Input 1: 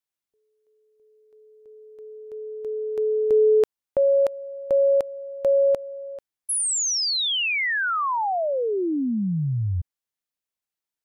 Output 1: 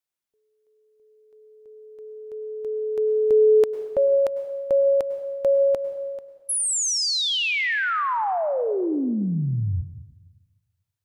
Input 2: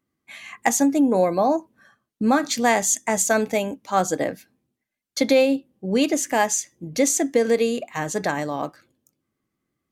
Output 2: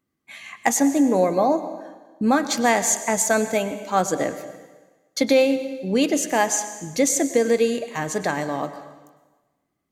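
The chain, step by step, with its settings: plate-style reverb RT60 1.3 s, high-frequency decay 0.95×, pre-delay 90 ms, DRR 11 dB

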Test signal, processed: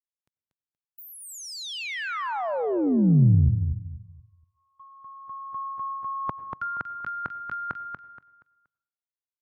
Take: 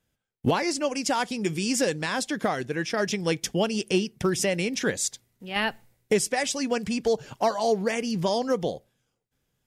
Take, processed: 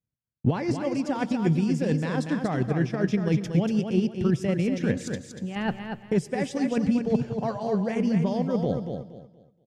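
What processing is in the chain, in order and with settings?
reverse; compression 12:1, threshold -32 dBFS; reverse; low-pass 2.1 kHz 6 dB/octave; peaking EQ 130 Hz +14 dB 2.3 oct; gate -57 dBFS, range -25 dB; on a send: feedback delay 237 ms, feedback 28%, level -6 dB; on the sum: plate-style reverb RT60 0.62 s, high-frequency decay 0.7×, pre-delay 80 ms, DRR 17 dB; transient shaper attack +4 dB, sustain -1 dB; trim +3 dB

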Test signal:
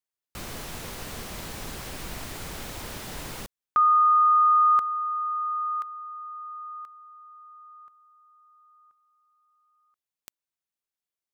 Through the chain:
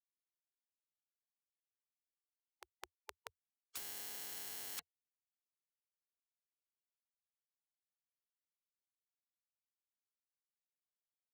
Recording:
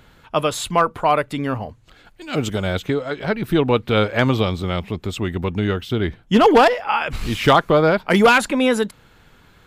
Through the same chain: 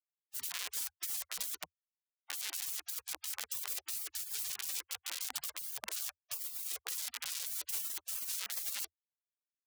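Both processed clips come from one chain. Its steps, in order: spectrum inverted on a logarithmic axis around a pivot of 870 Hz; Schmitt trigger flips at -23 dBFS; spectral gate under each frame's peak -30 dB weak

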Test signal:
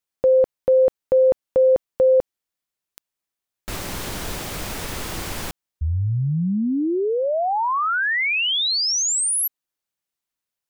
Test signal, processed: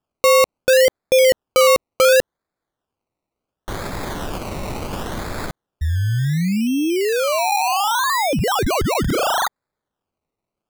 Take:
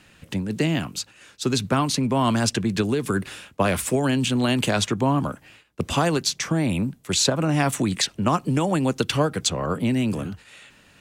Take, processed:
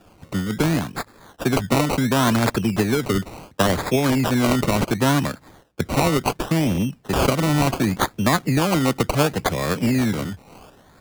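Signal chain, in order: decimation with a swept rate 21×, swing 60% 0.7 Hz; trim +2.5 dB

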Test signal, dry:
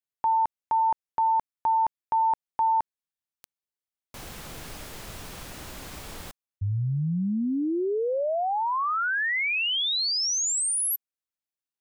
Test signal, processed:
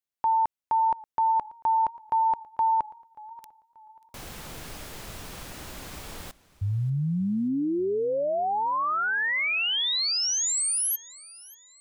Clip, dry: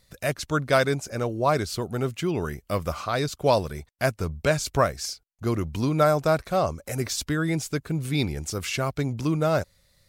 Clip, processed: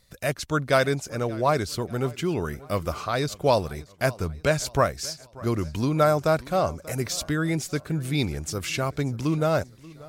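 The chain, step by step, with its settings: modulated delay 584 ms, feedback 40%, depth 83 cents, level -21 dB

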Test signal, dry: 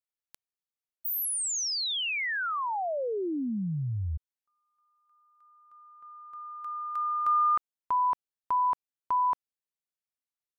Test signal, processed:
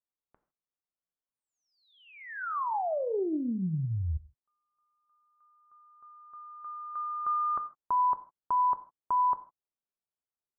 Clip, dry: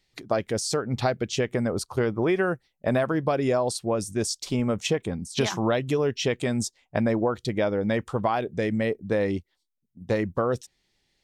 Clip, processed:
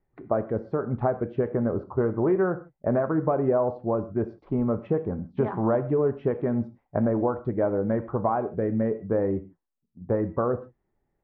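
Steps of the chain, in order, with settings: low-pass 1.3 kHz 24 dB/octave; gated-style reverb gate 180 ms falling, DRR 10 dB; loudspeaker Doppler distortion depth 0.1 ms

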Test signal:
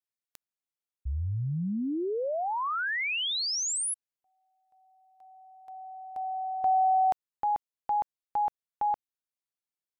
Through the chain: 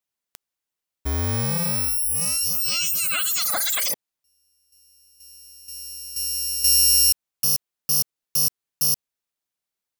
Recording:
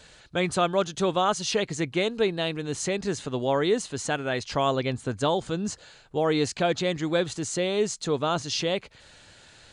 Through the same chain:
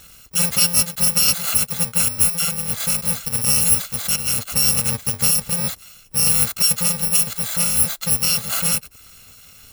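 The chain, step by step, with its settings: bit-reversed sample order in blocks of 128 samples; trim +7 dB

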